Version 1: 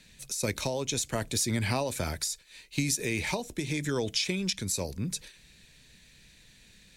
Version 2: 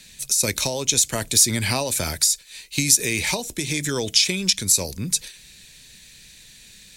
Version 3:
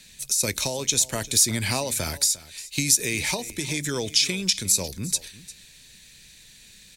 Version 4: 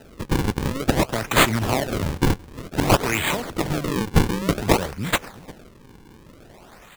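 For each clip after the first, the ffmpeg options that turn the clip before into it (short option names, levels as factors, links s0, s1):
-af "highshelf=f=3200:g=12,volume=1.58"
-af "aecho=1:1:352:0.126,volume=0.708"
-af "acrusher=samples=39:mix=1:aa=0.000001:lfo=1:lforange=62.4:lforate=0.54,volume=1.5"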